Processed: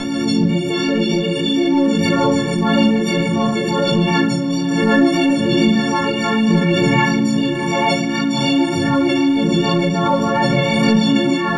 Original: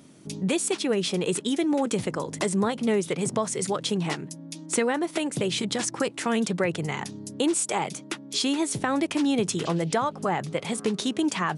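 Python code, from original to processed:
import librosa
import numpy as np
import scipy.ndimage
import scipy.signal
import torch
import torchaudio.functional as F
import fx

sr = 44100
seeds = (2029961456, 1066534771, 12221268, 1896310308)

y = fx.freq_snap(x, sr, grid_st=4)
y = fx.over_compress(y, sr, threshold_db=-30.0, ratio=-1.0)
y = fx.rotary(y, sr, hz=6.7)
y = fx.air_absorb(y, sr, metres=180.0)
y = fx.echo_diffused(y, sr, ms=630, feedback_pct=64, wet_db=-12)
y = fx.room_shoebox(y, sr, seeds[0], volume_m3=110.0, walls='mixed', distance_m=1.5)
y = fx.pre_swell(y, sr, db_per_s=22.0)
y = F.gain(torch.from_numpy(y), 7.0).numpy()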